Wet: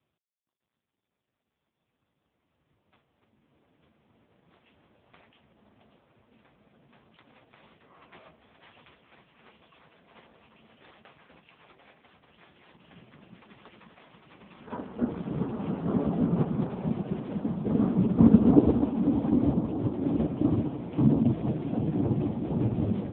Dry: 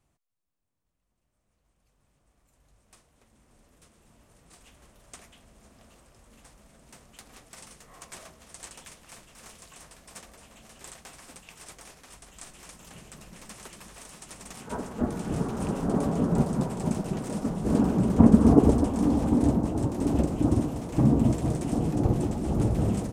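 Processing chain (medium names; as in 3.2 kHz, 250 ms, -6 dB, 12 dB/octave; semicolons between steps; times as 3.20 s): AMR-NB 4.75 kbps 8 kHz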